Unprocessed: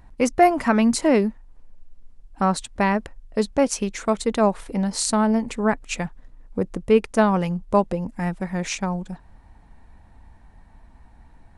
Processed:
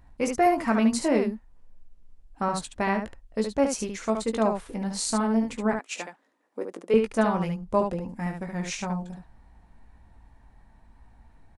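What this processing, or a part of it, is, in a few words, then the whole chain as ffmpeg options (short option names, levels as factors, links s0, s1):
slapback doubling: -filter_complex "[0:a]asplit=3[s0][s1][s2];[s1]adelay=18,volume=0.447[s3];[s2]adelay=72,volume=0.531[s4];[s0][s3][s4]amix=inputs=3:normalize=0,asettb=1/sr,asplit=3[s5][s6][s7];[s5]atrim=end=5.794[s8];[s6]atrim=start=5.79:end=6.94,asetpts=PTS-STARTPTS,afade=t=in:d=0.004:c=qsin,afade=t=out:st=1.146:d=0.004:c=qsin,highpass=f=300:w=0.5412,highpass=f=300:w=1.3066[s9];[s7]atrim=start=6.936[s10];[s8][s9]acrossfade=d=0.004:c1=hsin:c2=qsin[s11];[s11][s10]acrossfade=d=0.004:c1=qsin:c2=hsin,volume=0.473"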